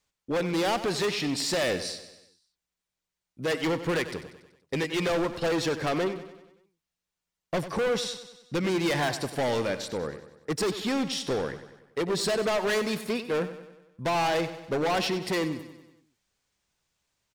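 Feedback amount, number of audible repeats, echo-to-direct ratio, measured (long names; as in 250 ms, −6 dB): 54%, 5, −11.0 dB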